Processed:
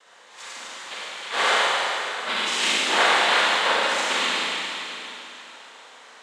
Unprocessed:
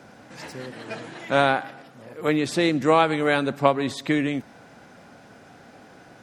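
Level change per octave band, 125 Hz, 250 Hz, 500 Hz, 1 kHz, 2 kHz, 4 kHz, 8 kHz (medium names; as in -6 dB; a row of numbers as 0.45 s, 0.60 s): under -20 dB, -14.5 dB, -6.0 dB, +2.0 dB, +6.5 dB, +12.0 dB, +11.5 dB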